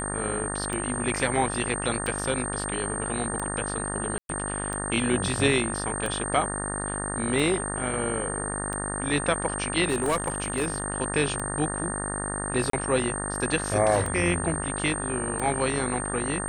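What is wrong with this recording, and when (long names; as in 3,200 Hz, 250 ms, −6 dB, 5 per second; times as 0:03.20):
mains buzz 50 Hz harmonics 37 −33 dBFS
scratch tick 45 rpm −18 dBFS
whistle 8,700 Hz −32 dBFS
0:04.18–0:04.29: drop-out 112 ms
0:09.88–0:10.84: clipping −20 dBFS
0:12.70–0:12.73: drop-out 33 ms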